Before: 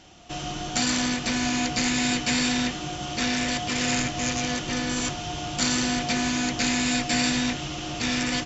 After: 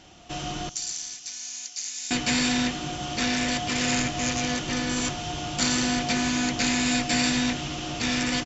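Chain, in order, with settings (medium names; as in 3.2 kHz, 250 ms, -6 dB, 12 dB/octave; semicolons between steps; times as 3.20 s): 0.69–2.11 s: band-pass filter 6.2 kHz, Q 3.2; feedback delay 230 ms, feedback 50%, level -21 dB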